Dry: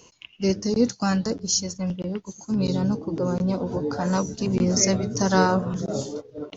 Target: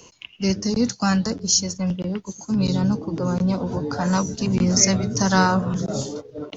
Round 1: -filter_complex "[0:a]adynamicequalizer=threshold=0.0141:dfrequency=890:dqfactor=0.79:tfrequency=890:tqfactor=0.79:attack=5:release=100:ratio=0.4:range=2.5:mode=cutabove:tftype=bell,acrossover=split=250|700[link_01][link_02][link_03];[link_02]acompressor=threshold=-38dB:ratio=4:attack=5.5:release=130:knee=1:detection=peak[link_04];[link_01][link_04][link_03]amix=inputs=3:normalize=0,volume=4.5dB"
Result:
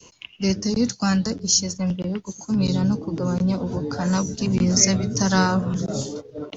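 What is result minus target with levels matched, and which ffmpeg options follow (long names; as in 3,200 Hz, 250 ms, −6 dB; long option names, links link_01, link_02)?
1,000 Hz band −3.0 dB
-filter_complex "[0:a]acrossover=split=250|700[link_01][link_02][link_03];[link_02]acompressor=threshold=-38dB:ratio=4:attack=5.5:release=130:knee=1:detection=peak[link_04];[link_01][link_04][link_03]amix=inputs=3:normalize=0,volume=4.5dB"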